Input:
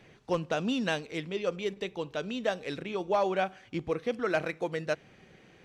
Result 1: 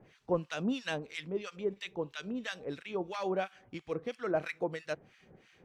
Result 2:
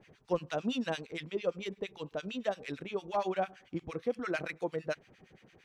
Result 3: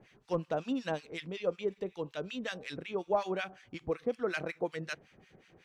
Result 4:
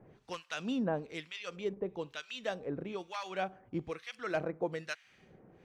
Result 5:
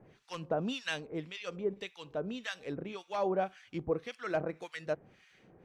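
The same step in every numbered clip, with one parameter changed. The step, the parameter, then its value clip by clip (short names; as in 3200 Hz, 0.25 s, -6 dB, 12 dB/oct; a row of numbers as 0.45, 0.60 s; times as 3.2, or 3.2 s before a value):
harmonic tremolo, rate: 3, 8.8, 5.4, 1.1, 1.8 Hz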